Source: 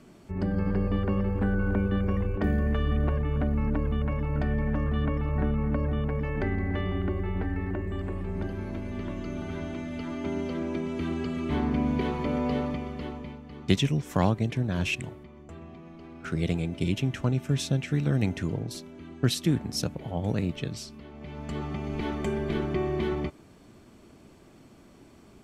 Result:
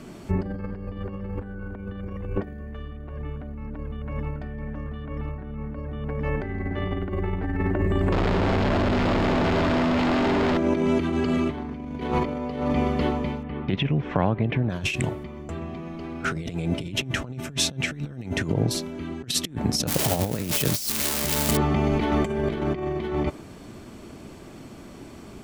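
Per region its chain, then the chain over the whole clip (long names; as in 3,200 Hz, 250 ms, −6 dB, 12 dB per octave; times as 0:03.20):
0:08.12–0:10.57: sign of each sample alone + high-frequency loss of the air 180 metres + notch filter 5,900 Hz, Q 14
0:13.43–0:14.70: low-pass filter 2,900 Hz 24 dB per octave + downward compressor 2.5 to 1, threshold −33 dBFS
0:19.87–0:21.57: spike at every zero crossing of −21 dBFS + low-shelf EQ 160 Hz −2.5 dB
whole clip: compressor whose output falls as the input rises −32 dBFS, ratio −0.5; dynamic equaliser 680 Hz, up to +3 dB, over −41 dBFS, Q 0.72; level +6.5 dB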